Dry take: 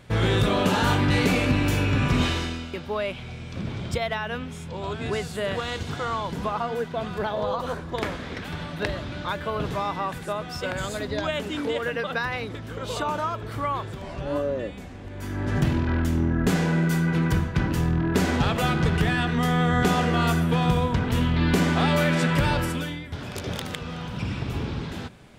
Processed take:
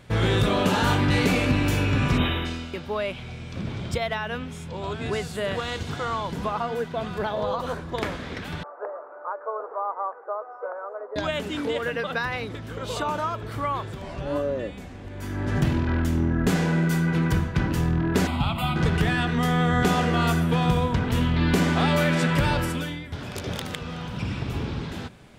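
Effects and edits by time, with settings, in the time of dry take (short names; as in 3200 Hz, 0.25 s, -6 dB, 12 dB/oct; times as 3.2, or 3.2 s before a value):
2.18–2.46 spectral gain 3900–11000 Hz -26 dB
8.63–11.16 elliptic band-pass 450–1300 Hz, stop band 50 dB
18.27–18.76 fixed phaser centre 1700 Hz, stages 6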